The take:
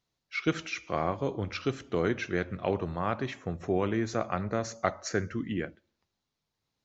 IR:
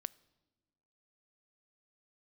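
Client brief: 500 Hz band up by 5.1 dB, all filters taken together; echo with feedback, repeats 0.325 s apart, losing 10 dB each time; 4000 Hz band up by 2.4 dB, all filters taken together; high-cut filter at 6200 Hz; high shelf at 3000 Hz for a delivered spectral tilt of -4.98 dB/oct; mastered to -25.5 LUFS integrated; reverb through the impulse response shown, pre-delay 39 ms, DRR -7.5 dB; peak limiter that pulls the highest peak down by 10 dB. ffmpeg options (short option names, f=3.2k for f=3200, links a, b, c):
-filter_complex "[0:a]lowpass=6.2k,equalizer=f=500:t=o:g=6.5,highshelf=f=3k:g=-4,equalizer=f=4k:t=o:g=7,alimiter=limit=-18dB:level=0:latency=1,aecho=1:1:325|650|975|1300:0.316|0.101|0.0324|0.0104,asplit=2[a][b];[1:a]atrim=start_sample=2205,adelay=39[c];[b][c]afir=irnorm=-1:irlink=0,volume=10.5dB[d];[a][d]amix=inputs=2:normalize=0,volume=-2.5dB"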